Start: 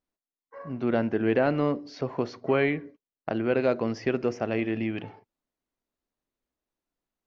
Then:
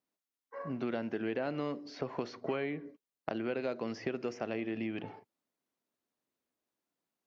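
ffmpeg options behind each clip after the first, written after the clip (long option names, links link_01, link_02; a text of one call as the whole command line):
ffmpeg -i in.wav -filter_complex "[0:a]highpass=140,acrossover=split=1400|3000[link_01][link_02][link_03];[link_01]acompressor=threshold=-34dB:ratio=4[link_04];[link_02]acompressor=threshold=-50dB:ratio=4[link_05];[link_03]acompressor=threshold=-53dB:ratio=4[link_06];[link_04][link_05][link_06]amix=inputs=3:normalize=0" out.wav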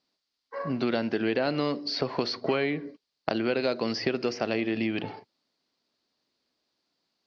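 ffmpeg -i in.wav -af "lowpass=frequency=4600:width_type=q:width=5.1,volume=8dB" out.wav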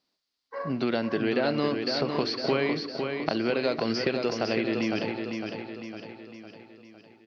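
ffmpeg -i in.wav -af "aecho=1:1:506|1012|1518|2024|2530|3036:0.531|0.271|0.138|0.0704|0.0359|0.0183" out.wav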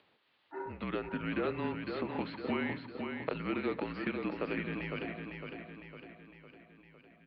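ffmpeg -i in.wav -af "highpass=frequency=380:width_type=q:width=0.5412,highpass=frequency=380:width_type=q:width=1.307,lowpass=frequency=3300:width_type=q:width=0.5176,lowpass=frequency=3300:width_type=q:width=0.7071,lowpass=frequency=3300:width_type=q:width=1.932,afreqshift=-170,acompressor=mode=upward:threshold=-47dB:ratio=2.5,volume=-6dB" out.wav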